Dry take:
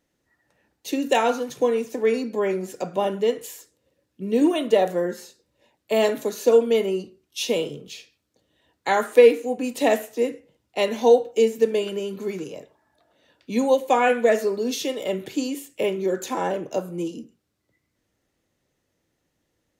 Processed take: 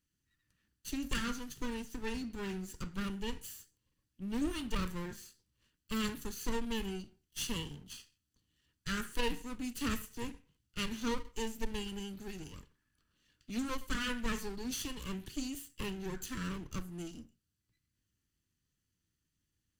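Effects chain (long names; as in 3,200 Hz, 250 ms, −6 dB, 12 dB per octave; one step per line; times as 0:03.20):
lower of the sound and its delayed copy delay 0.65 ms
guitar amp tone stack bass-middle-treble 6-0-2
soft clipping −32.5 dBFS, distortion −17 dB
level +8 dB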